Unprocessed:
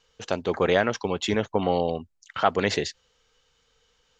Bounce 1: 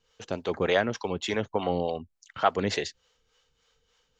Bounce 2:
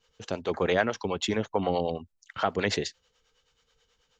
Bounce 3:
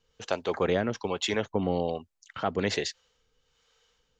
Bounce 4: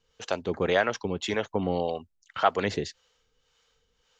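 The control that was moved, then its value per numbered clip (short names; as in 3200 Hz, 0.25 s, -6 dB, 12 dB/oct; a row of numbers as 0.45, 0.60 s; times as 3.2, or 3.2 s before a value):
harmonic tremolo, rate: 3.4, 9.3, 1.2, 1.8 Hz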